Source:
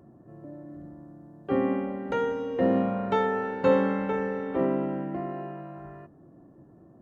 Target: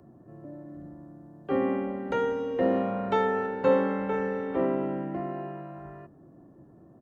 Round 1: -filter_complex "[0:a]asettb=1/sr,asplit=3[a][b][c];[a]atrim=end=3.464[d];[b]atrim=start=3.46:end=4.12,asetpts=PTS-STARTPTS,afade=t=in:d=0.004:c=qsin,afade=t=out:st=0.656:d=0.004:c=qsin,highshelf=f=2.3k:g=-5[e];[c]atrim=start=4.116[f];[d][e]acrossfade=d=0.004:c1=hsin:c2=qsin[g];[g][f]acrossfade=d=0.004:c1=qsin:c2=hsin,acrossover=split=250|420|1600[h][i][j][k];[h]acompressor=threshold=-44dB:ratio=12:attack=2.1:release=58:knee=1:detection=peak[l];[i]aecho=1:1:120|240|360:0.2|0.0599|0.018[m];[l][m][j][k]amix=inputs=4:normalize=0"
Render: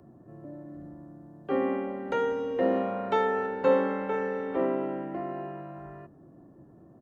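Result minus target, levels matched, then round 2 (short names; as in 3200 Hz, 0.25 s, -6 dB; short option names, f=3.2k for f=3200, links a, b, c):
compressor: peak gain reduction +9 dB
-filter_complex "[0:a]asettb=1/sr,asplit=3[a][b][c];[a]atrim=end=3.464[d];[b]atrim=start=3.46:end=4.12,asetpts=PTS-STARTPTS,afade=t=in:d=0.004:c=qsin,afade=t=out:st=0.656:d=0.004:c=qsin,highshelf=f=2.3k:g=-5[e];[c]atrim=start=4.116[f];[d][e]acrossfade=d=0.004:c1=hsin:c2=qsin[g];[g][f]acrossfade=d=0.004:c1=qsin:c2=hsin,acrossover=split=250|420|1600[h][i][j][k];[h]acompressor=threshold=-34dB:ratio=12:attack=2.1:release=58:knee=1:detection=peak[l];[i]aecho=1:1:120|240|360:0.2|0.0599|0.018[m];[l][m][j][k]amix=inputs=4:normalize=0"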